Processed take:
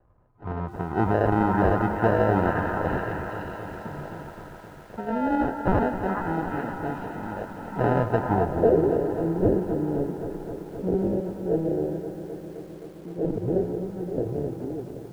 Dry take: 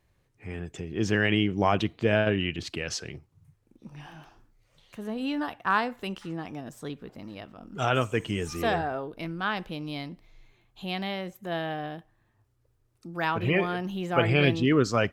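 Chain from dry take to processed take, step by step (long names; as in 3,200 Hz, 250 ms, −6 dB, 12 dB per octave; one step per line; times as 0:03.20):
fade-out on the ending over 4.12 s
low-shelf EQ 69 Hz +3 dB
hum removal 69.5 Hz, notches 5
decimation without filtering 39×
on a send: echo through a band-pass that steps 421 ms, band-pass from 1,300 Hz, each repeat 0.7 octaves, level −3 dB
on the sum: low-pass filter sweep 1,100 Hz → 440 Hz, 0:08.21–0:08.75
boost into a limiter +14 dB
feedback echo at a low word length 261 ms, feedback 80%, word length 7 bits, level −11 dB
level −9 dB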